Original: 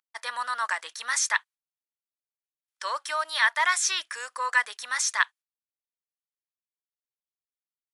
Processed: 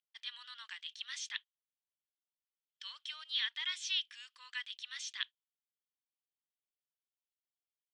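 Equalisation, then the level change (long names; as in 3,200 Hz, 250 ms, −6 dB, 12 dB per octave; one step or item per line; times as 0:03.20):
four-pole ladder band-pass 3,400 Hz, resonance 70%
high-frequency loss of the air 66 metres
+1.0 dB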